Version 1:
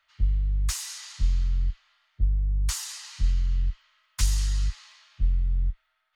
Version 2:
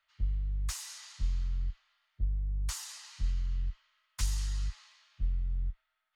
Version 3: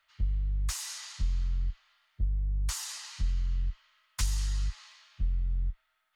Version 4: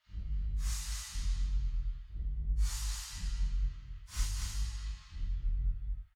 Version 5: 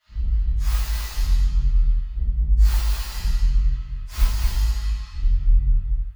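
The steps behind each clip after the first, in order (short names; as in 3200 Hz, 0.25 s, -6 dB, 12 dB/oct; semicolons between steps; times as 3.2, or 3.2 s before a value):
dynamic EQ 720 Hz, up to +4 dB, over -53 dBFS, Q 0.71; gain -8 dB
compressor 1.5:1, threshold -38 dBFS, peak gain reduction 5 dB; gain +6 dB
phase scrambler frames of 0.2 s; on a send: tapped delay 0.227/0.306 s -4/-10 dB; on the sum: gain -6 dB
tracing distortion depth 0.18 ms; reverb RT60 0.35 s, pre-delay 7 ms, DRR -9 dB; gain +2.5 dB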